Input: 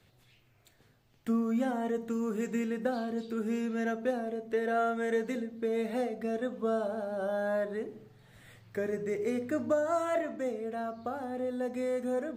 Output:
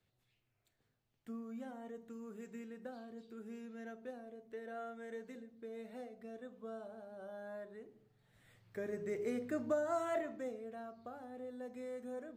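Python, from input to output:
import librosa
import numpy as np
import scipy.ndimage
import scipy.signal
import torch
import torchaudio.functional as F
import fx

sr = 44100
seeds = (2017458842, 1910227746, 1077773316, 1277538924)

y = fx.gain(x, sr, db=fx.line((7.96, -16.5), (9.08, -6.5), (10.19, -6.5), (10.91, -13.0)))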